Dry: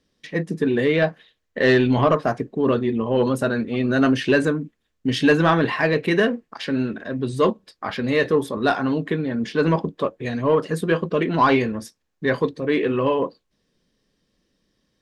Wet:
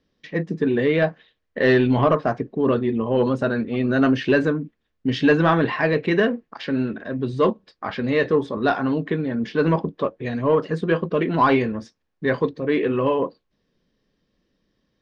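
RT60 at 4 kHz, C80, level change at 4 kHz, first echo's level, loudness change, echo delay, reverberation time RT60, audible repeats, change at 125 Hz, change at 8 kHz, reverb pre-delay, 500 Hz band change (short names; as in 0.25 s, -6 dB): none, none, -3.5 dB, none, -0.5 dB, none, none, none, 0.0 dB, under -10 dB, none, 0.0 dB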